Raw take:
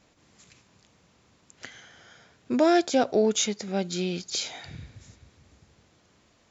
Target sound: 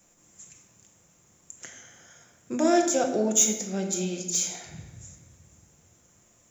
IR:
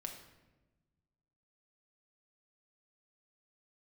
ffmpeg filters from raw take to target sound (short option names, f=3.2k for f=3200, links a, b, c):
-filter_complex "[0:a]highshelf=f=4.2k:g=-5.5,acrossover=split=140|850|2900[a][b][c][d];[d]aexciter=amount=7:drive=10:freq=6.6k[e];[a][b][c][e]amix=inputs=4:normalize=0[f];[1:a]atrim=start_sample=2205,asetrate=41895,aresample=44100[g];[f][g]afir=irnorm=-1:irlink=0"